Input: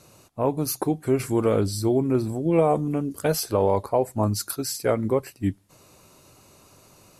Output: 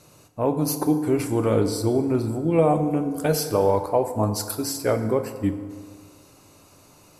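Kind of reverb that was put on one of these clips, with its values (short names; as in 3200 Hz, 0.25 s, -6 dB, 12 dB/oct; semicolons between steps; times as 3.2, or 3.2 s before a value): FDN reverb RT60 1.9 s, low-frequency decay 0.85×, high-frequency decay 0.5×, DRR 7 dB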